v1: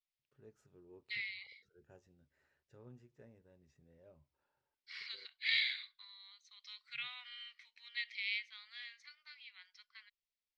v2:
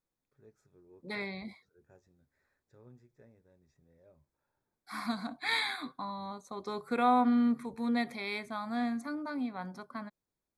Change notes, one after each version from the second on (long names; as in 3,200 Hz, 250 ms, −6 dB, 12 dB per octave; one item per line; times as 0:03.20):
second voice: remove elliptic band-pass filter 2,000–5,400 Hz, stop band 80 dB
master: add Butterworth band-reject 2,900 Hz, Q 4.3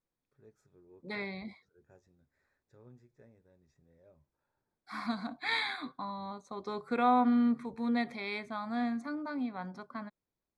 second voice: add high-frequency loss of the air 72 metres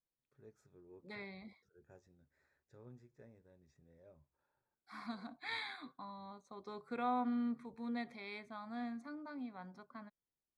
second voice −10.0 dB